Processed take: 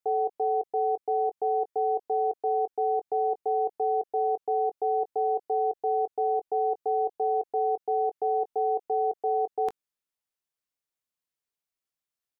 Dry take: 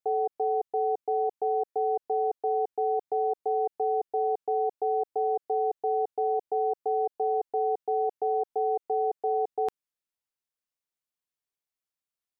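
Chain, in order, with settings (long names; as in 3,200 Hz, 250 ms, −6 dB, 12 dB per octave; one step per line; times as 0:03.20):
double-tracking delay 20 ms −13 dB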